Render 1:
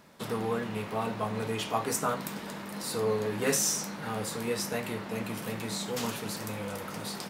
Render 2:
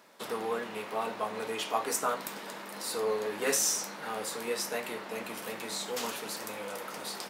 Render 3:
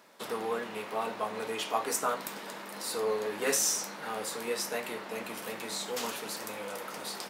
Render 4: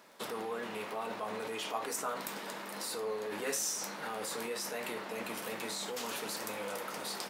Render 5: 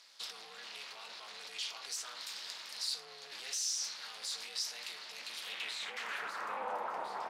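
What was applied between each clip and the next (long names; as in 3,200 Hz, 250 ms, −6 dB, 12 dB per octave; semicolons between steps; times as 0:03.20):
high-pass filter 360 Hz 12 dB per octave
no processing that can be heard
surface crackle 19 per second −46 dBFS; in parallel at −2 dB: compressor whose output falls as the input rises −38 dBFS, ratio −0.5; on the sum: level −7 dB
soft clipping −36 dBFS, distortion −12 dB; amplitude modulation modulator 280 Hz, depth 75%; band-pass filter sweep 4,600 Hz → 880 Hz, 0:05.26–0:06.73; level +14 dB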